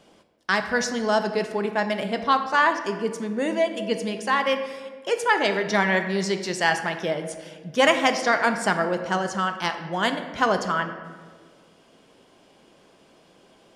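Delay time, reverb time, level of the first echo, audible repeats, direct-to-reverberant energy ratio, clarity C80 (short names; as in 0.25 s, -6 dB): none, 1.6 s, none, none, 6.5 dB, 10.0 dB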